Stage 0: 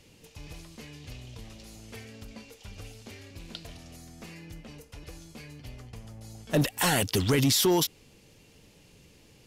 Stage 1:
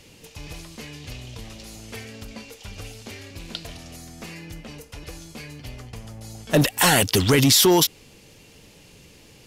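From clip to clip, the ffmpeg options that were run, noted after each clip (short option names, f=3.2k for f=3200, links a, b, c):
-af "lowshelf=f=450:g=-3,volume=8.5dB"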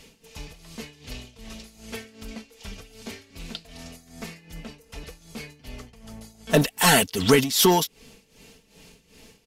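-af "aecho=1:1:4.5:0.57,tremolo=f=2.6:d=0.82"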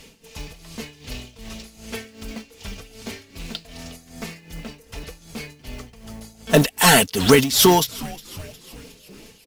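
-filter_complex "[0:a]asplit=6[a][b][c][d][e][f];[b]adelay=360,afreqshift=-140,volume=-19.5dB[g];[c]adelay=720,afreqshift=-280,volume=-24.4dB[h];[d]adelay=1080,afreqshift=-420,volume=-29.3dB[i];[e]adelay=1440,afreqshift=-560,volume=-34.1dB[j];[f]adelay=1800,afreqshift=-700,volume=-39dB[k];[a][g][h][i][j][k]amix=inputs=6:normalize=0,acrusher=bits=5:mode=log:mix=0:aa=0.000001,volume=4dB"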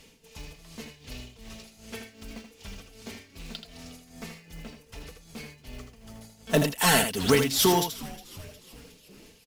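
-af "aecho=1:1:80:0.422,volume=-8dB"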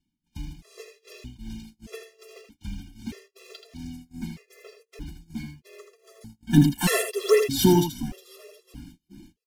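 -af "agate=range=-28dB:threshold=-50dB:ratio=16:detection=peak,lowshelf=f=450:t=q:w=1.5:g=8,afftfilt=real='re*gt(sin(2*PI*0.8*pts/sr)*(1-2*mod(floor(b*sr/1024/350),2)),0)':imag='im*gt(sin(2*PI*0.8*pts/sr)*(1-2*mod(floor(b*sr/1024/350),2)),0)':win_size=1024:overlap=0.75"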